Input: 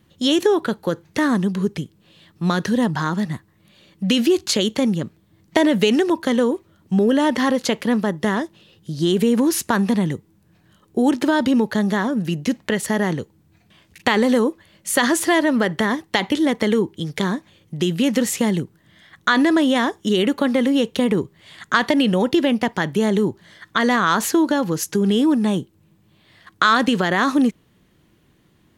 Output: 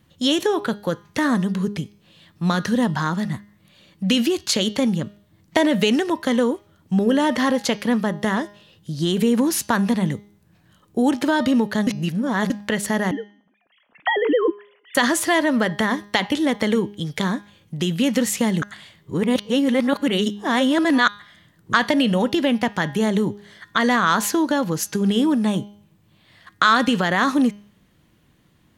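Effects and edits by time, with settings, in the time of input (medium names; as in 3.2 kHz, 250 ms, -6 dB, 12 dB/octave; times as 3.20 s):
11.87–12.50 s: reverse
13.11–14.95 s: formants replaced by sine waves
18.62–21.73 s: reverse
whole clip: peaking EQ 370 Hz -5.5 dB 0.46 oct; de-hum 204.7 Hz, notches 31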